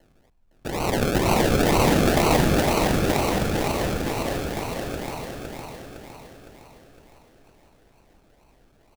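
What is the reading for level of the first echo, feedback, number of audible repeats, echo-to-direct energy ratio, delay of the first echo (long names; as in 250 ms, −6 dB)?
−3.5 dB, 51%, 6, −2.0 dB, 510 ms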